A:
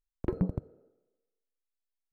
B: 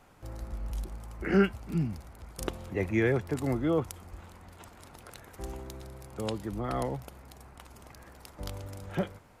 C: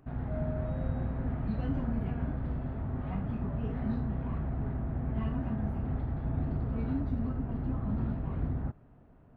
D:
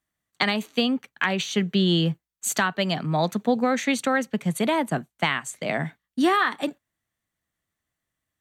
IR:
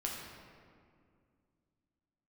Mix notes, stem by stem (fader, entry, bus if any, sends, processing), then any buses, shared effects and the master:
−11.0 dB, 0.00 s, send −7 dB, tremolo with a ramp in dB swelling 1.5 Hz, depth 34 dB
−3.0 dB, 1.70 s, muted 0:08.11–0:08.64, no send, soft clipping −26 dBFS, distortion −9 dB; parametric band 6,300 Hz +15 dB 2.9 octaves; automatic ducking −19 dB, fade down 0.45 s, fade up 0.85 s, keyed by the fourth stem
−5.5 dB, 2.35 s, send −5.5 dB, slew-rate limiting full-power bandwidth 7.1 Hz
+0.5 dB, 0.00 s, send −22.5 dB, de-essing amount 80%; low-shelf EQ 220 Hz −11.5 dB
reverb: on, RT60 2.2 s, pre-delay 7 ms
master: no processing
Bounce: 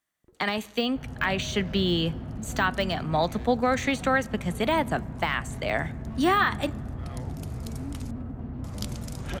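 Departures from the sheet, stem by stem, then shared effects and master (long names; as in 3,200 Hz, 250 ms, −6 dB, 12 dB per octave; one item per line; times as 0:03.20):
stem A: send −7 dB → −13.5 dB
stem B: entry 1.70 s → 0.35 s
stem C: entry 2.35 s → 0.90 s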